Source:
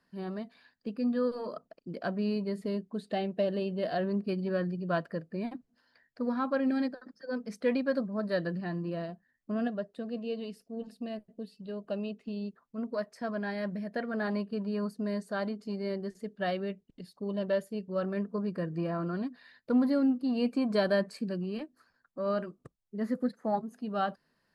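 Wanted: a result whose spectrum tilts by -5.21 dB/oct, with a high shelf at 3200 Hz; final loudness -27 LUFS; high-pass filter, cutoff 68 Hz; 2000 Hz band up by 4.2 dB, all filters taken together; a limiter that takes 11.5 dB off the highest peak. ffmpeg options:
-af "highpass=68,equalizer=f=2k:t=o:g=3,highshelf=f=3.2k:g=8,volume=9dB,alimiter=limit=-17dB:level=0:latency=1"

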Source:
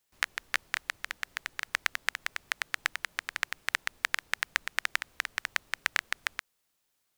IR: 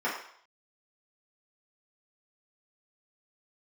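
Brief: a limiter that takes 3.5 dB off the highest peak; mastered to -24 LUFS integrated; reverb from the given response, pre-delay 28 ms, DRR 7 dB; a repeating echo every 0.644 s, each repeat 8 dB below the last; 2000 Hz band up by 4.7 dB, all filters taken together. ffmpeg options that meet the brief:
-filter_complex "[0:a]equalizer=f=2k:t=o:g=5.5,alimiter=limit=-6dB:level=0:latency=1,aecho=1:1:644|1288|1932|2576|3220:0.398|0.159|0.0637|0.0255|0.0102,asplit=2[a][b];[1:a]atrim=start_sample=2205,adelay=28[c];[b][c]afir=irnorm=-1:irlink=0,volume=-17.5dB[d];[a][d]amix=inputs=2:normalize=0,volume=5.5dB"

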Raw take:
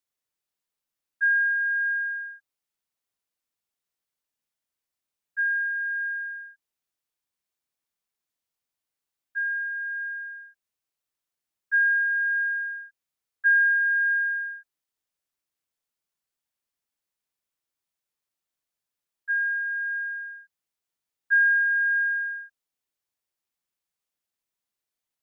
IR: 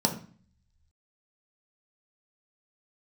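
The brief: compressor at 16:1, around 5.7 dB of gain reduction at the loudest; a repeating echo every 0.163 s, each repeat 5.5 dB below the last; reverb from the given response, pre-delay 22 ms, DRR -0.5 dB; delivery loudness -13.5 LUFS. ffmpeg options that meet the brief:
-filter_complex "[0:a]acompressor=threshold=-23dB:ratio=16,aecho=1:1:163|326|489|652|815|978|1141:0.531|0.281|0.149|0.079|0.0419|0.0222|0.0118,asplit=2[a][b];[1:a]atrim=start_sample=2205,adelay=22[c];[b][c]afir=irnorm=-1:irlink=0,volume=-9.5dB[d];[a][d]amix=inputs=2:normalize=0,volume=7dB"

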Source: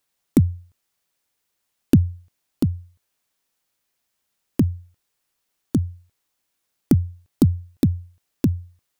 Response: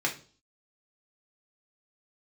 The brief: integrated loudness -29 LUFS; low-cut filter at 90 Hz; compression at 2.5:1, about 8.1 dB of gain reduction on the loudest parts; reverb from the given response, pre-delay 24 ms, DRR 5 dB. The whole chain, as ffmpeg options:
-filter_complex "[0:a]highpass=90,acompressor=threshold=-23dB:ratio=2.5,asplit=2[a][b];[1:a]atrim=start_sample=2205,adelay=24[c];[b][c]afir=irnorm=-1:irlink=0,volume=-13.5dB[d];[a][d]amix=inputs=2:normalize=0,volume=0.5dB"

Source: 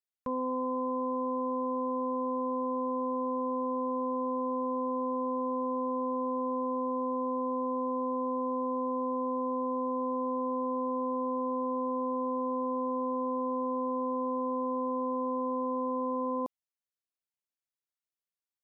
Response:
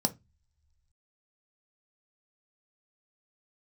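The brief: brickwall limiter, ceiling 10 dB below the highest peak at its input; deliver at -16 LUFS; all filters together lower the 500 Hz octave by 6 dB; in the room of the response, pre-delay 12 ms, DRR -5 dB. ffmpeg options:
-filter_complex "[0:a]equalizer=f=500:t=o:g=-6,alimiter=level_in=13.5dB:limit=-24dB:level=0:latency=1,volume=-13.5dB,asplit=2[a][b];[1:a]atrim=start_sample=2205,adelay=12[c];[b][c]afir=irnorm=-1:irlink=0,volume=-1dB[d];[a][d]amix=inputs=2:normalize=0,volume=16.5dB"

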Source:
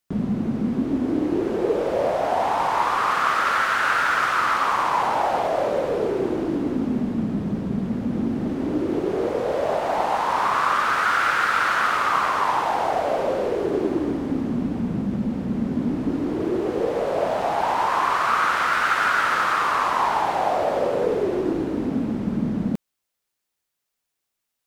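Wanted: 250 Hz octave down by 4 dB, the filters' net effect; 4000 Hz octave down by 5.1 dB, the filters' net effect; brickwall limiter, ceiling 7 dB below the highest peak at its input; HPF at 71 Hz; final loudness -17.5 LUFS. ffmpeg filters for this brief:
-af "highpass=71,equalizer=f=250:t=o:g=-5,equalizer=f=4k:t=o:g=-7,volume=7.5dB,alimiter=limit=-7dB:level=0:latency=1"

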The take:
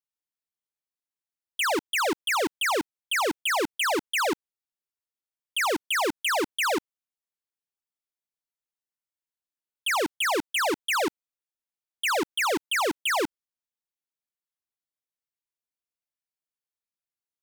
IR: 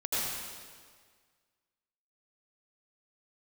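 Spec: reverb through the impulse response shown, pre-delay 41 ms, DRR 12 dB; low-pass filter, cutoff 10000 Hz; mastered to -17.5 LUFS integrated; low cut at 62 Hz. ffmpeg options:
-filter_complex "[0:a]highpass=62,lowpass=10k,asplit=2[a][b];[1:a]atrim=start_sample=2205,adelay=41[c];[b][c]afir=irnorm=-1:irlink=0,volume=-20dB[d];[a][d]amix=inputs=2:normalize=0,volume=8.5dB"

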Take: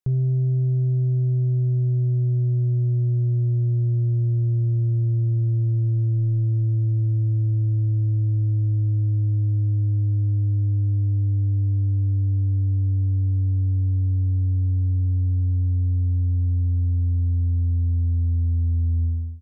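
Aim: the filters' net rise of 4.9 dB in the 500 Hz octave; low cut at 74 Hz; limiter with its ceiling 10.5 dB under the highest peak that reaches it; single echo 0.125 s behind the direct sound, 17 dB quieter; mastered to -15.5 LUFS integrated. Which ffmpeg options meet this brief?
-af "highpass=74,equalizer=f=500:t=o:g=8.5,alimiter=level_in=2dB:limit=-24dB:level=0:latency=1,volume=-2dB,aecho=1:1:125:0.141,volume=16.5dB"

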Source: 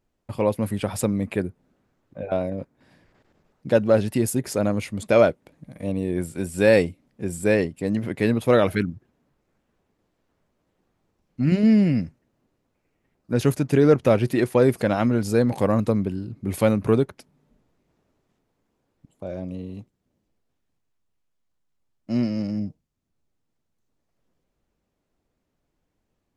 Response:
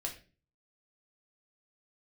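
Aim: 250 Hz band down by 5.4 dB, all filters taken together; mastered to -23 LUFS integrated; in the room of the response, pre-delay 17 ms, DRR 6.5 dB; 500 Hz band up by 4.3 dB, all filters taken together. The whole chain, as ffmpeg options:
-filter_complex "[0:a]equalizer=f=250:t=o:g=-9,equalizer=f=500:t=o:g=7,asplit=2[a][b];[1:a]atrim=start_sample=2205,adelay=17[c];[b][c]afir=irnorm=-1:irlink=0,volume=-7dB[d];[a][d]amix=inputs=2:normalize=0,volume=-3.5dB"

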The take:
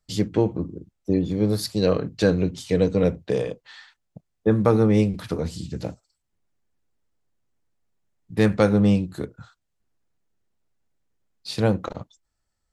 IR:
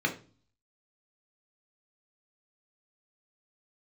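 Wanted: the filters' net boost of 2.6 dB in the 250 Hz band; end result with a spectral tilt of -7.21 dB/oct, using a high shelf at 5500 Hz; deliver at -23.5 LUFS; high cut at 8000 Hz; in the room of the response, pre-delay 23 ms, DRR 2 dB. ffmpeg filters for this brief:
-filter_complex "[0:a]lowpass=8k,equalizer=f=250:t=o:g=3.5,highshelf=f=5.5k:g=3.5,asplit=2[a][b];[1:a]atrim=start_sample=2205,adelay=23[c];[b][c]afir=irnorm=-1:irlink=0,volume=-11.5dB[d];[a][d]amix=inputs=2:normalize=0,volume=-5dB"

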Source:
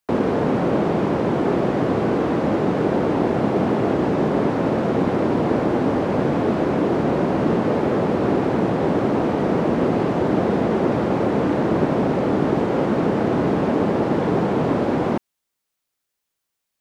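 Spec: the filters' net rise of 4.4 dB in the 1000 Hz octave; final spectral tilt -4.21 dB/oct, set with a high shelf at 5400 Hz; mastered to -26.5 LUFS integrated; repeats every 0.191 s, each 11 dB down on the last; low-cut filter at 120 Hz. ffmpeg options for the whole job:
-af "highpass=120,equalizer=f=1k:t=o:g=5.5,highshelf=f=5.4k:g=7,aecho=1:1:191|382|573:0.282|0.0789|0.0221,volume=-7.5dB"

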